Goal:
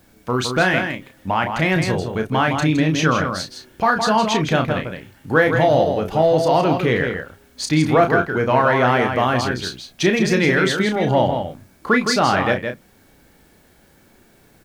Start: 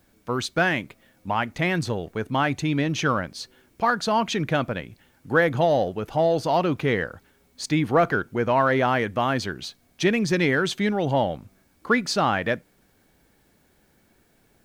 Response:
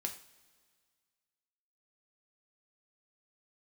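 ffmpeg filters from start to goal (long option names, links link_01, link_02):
-filter_complex "[0:a]asplit=2[link_01][link_02];[link_02]acompressor=threshold=-34dB:ratio=6,volume=-2.5dB[link_03];[link_01][link_03]amix=inputs=2:normalize=0,asplit=2[link_04][link_05];[link_05]adelay=32,volume=-6.5dB[link_06];[link_04][link_06]amix=inputs=2:normalize=0,asplit=2[link_07][link_08];[link_08]adelay=163.3,volume=-6dB,highshelf=frequency=4000:gain=-3.67[link_09];[link_07][link_09]amix=inputs=2:normalize=0,volume=2.5dB"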